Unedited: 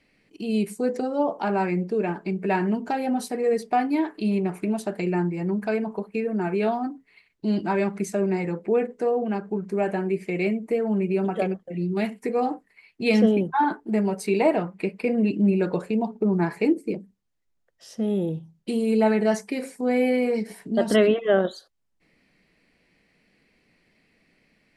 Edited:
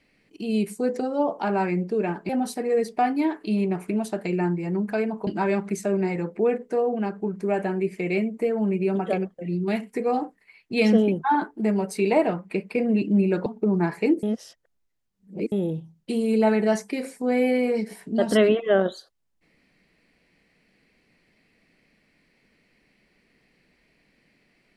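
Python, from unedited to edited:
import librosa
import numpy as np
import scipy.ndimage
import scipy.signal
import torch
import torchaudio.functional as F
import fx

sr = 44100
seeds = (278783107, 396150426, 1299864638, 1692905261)

y = fx.edit(x, sr, fx.cut(start_s=2.29, length_s=0.74),
    fx.cut(start_s=6.01, length_s=1.55),
    fx.cut(start_s=15.75, length_s=0.3),
    fx.reverse_span(start_s=16.82, length_s=1.29), tone=tone)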